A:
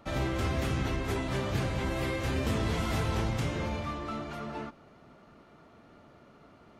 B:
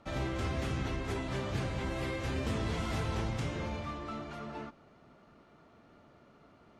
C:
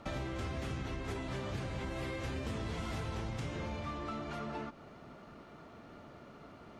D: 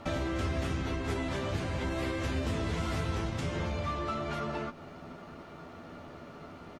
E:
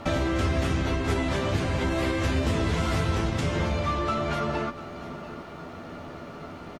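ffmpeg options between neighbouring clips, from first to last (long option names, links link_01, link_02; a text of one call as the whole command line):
ffmpeg -i in.wav -af "lowpass=9800,volume=-4dB" out.wav
ffmpeg -i in.wav -af "acompressor=threshold=-45dB:ratio=4,volume=7dB" out.wav
ffmpeg -i in.wav -filter_complex "[0:a]asplit=2[link_01][link_02];[link_02]adelay=12,volume=-5.5dB[link_03];[link_01][link_03]amix=inputs=2:normalize=0,volume=5dB" out.wav
ffmpeg -i in.wav -af "aecho=1:1:695:0.168,volume=7dB" out.wav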